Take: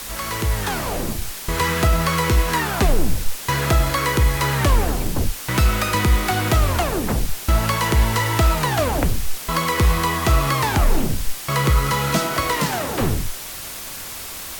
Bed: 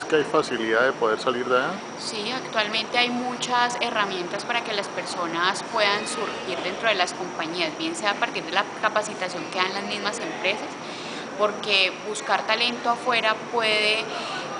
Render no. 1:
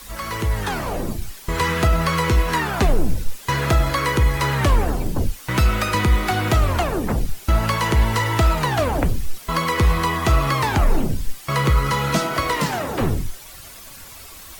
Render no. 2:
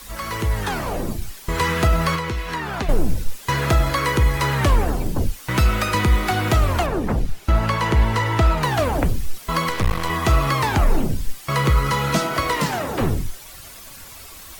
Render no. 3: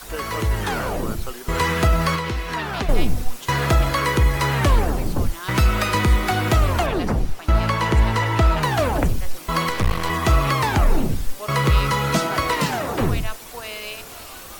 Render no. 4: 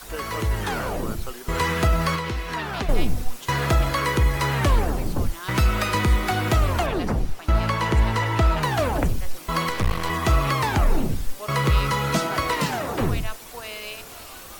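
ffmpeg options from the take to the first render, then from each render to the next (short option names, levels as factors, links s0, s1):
-af "afftdn=nr=10:nf=-33"
-filter_complex "[0:a]asettb=1/sr,asplit=3[s0][s1][s2];[s0]atrim=end=2.154[s3];[s1]atrim=start=2.15:end=2.89,asetpts=PTS-STARTPTS,afade=t=in:d=0.004:c=qsin,afade=t=out:st=0.736:d=0.004:c=qsin,acrossover=split=1500|5700[s4][s5][s6];[s4]acompressor=threshold=0.0562:ratio=4[s7];[s5]acompressor=threshold=0.0251:ratio=4[s8];[s6]acompressor=threshold=0.00355:ratio=4[s9];[s7][s8][s9]amix=inputs=3:normalize=0[s10];[s2]atrim=start=2.886[s11];[s3][s10]acrossfade=d=0.004:c1=hsin:c2=qsin[s12];[s12][s11]acrossfade=d=0.004:c1=qsin:c2=hsin,asettb=1/sr,asplit=3[s13][s14][s15];[s13]atrim=end=6.864[s16];[s14]atrim=start=6.86:end=8.63,asetpts=PTS-STARTPTS,afade=t=in:d=0.004:c=qsin,afade=t=out:st=1.766:d=0.004:c=qsin,aemphasis=mode=reproduction:type=cd[s17];[s15]atrim=start=8.626[s18];[s16][s17]acrossfade=d=0.004:c1=hsin:c2=qsin[s19];[s19][s18]acrossfade=d=0.004:c1=qsin:c2=hsin,asettb=1/sr,asplit=3[s20][s21][s22];[s20]atrim=end=9.694[s23];[s21]atrim=start=9.69:end=10.1,asetpts=PTS-STARTPTS,afade=t=in:d=0.004:c=qsin,afade=t=out:st=0.406:d=0.004:c=qsin,aeval=exprs='max(val(0),0)':c=same[s24];[s22]atrim=start=10.096[s25];[s23][s24]acrossfade=d=0.004:c1=hsin:c2=qsin[s26];[s26][s25]acrossfade=d=0.004:c1=qsin:c2=hsin"
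-filter_complex "[1:a]volume=0.251[s0];[0:a][s0]amix=inputs=2:normalize=0"
-af "volume=0.75"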